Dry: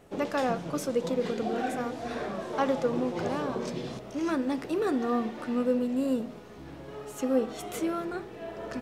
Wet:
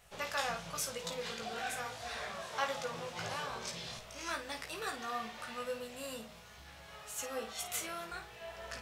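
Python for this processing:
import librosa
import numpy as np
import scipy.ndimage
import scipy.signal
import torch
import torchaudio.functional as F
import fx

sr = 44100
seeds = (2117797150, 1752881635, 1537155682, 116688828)

y = fx.tone_stack(x, sr, knobs='10-0-10')
y = fx.room_early_taps(y, sr, ms=(18, 53), db=(-4.5, -9.5))
y = F.gain(torch.from_numpy(y), 3.0).numpy()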